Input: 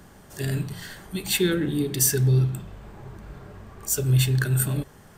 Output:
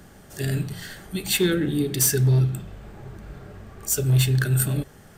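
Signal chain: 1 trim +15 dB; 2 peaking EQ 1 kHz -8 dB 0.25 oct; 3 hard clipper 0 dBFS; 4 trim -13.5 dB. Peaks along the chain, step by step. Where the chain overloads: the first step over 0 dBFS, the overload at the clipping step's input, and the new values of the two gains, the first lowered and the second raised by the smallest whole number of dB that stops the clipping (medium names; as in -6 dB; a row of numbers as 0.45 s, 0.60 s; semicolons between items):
+8.0 dBFS, +8.0 dBFS, 0.0 dBFS, -13.5 dBFS; step 1, 8.0 dB; step 1 +7 dB, step 4 -5.5 dB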